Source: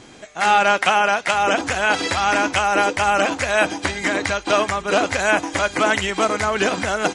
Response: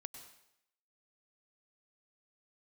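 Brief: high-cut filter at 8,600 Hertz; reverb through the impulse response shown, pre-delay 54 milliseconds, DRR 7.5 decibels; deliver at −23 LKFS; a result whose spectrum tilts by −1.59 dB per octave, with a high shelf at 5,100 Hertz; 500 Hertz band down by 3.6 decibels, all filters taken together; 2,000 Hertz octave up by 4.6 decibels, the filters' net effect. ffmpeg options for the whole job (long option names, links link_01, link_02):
-filter_complex "[0:a]lowpass=8600,equalizer=frequency=500:width_type=o:gain=-5.5,equalizer=frequency=2000:width_type=o:gain=5.5,highshelf=frequency=5100:gain=8.5,asplit=2[link_01][link_02];[1:a]atrim=start_sample=2205,adelay=54[link_03];[link_02][link_03]afir=irnorm=-1:irlink=0,volume=-3dB[link_04];[link_01][link_04]amix=inputs=2:normalize=0,volume=-7.5dB"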